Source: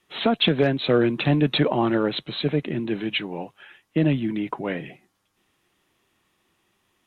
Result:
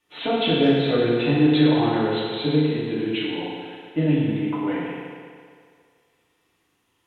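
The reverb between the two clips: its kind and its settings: FDN reverb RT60 2.1 s, low-frequency decay 0.75×, high-frequency decay 0.9×, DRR -8 dB; trim -8.5 dB

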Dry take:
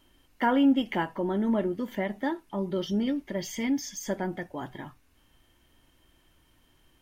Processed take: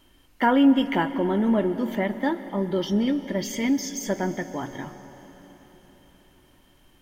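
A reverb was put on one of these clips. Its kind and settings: plate-style reverb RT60 4.6 s, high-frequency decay 0.8×, pre-delay 115 ms, DRR 12.5 dB; trim +4.5 dB

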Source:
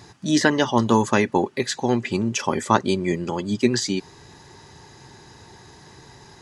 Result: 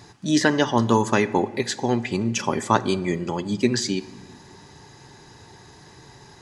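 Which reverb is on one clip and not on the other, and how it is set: simulated room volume 1200 m³, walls mixed, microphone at 0.32 m; trim -1 dB

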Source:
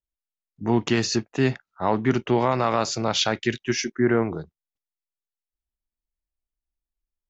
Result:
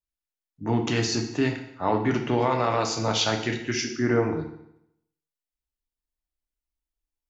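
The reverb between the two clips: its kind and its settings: FDN reverb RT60 0.78 s, low-frequency decay 1×, high-frequency decay 0.95×, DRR 2.5 dB; trim -3 dB

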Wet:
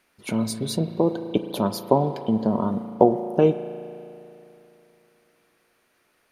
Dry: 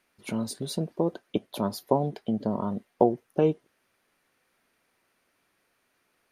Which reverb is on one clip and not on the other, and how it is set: spring tank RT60 2.9 s, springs 36 ms, chirp 30 ms, DRR 10 dB; trim +5 dB

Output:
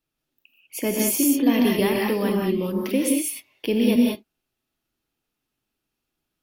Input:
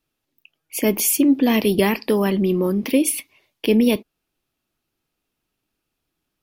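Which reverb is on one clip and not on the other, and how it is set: gated-style reverb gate 220 ms rising, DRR -0.5 dB; trim -6 dB

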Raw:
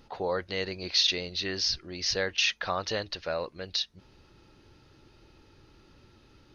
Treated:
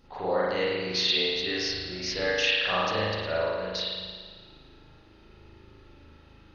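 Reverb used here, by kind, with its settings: spring tank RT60 1.6 s, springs 38 ms, chirp 20 ms, DRR -9 dB; trim -5 dB

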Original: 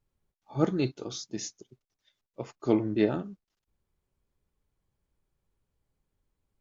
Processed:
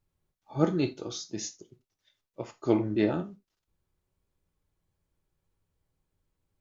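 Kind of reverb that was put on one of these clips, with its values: gated-style reverb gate 110 ms falling, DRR 8 dB

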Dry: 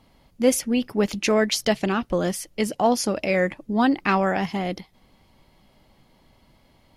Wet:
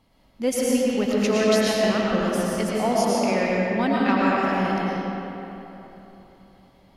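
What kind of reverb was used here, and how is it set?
algorithmic reverb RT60 3.4 s, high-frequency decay 0.6×, pre-delay 70 ms, DRR -5.5 dB; trim -5.5 dB

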